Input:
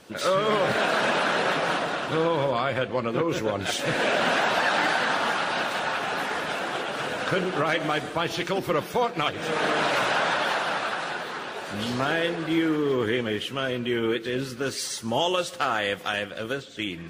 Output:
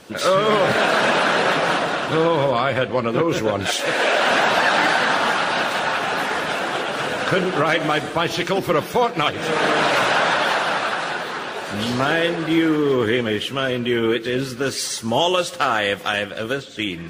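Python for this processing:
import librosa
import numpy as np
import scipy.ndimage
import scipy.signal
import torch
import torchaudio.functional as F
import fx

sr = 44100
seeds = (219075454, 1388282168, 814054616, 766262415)

y = fx.bass_treble(x, sr, bass_db=-14, treble_db=0, at=(3.68, 4.31))
y = F.gain(torch.from_numpy(y), 6.0).numpy()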